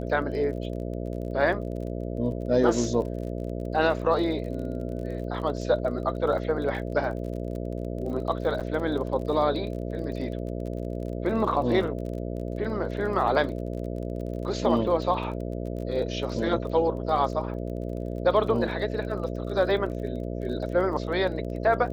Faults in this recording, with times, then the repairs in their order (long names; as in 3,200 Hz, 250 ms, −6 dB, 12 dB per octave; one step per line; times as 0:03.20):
mains buzz 60 Hz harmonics 11 −32 dBFS
surface crackle 34 per second −36 dBFS
0:08.60–0:08.61: drop-out 7.4 ms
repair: click removal
hum removal 60 Hz, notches 11
repair the gap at 0:08.60, 7.4 ms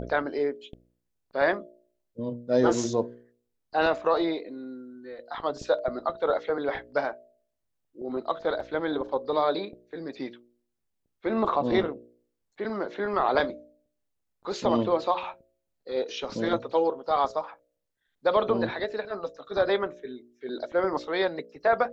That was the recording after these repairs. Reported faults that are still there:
none of them is left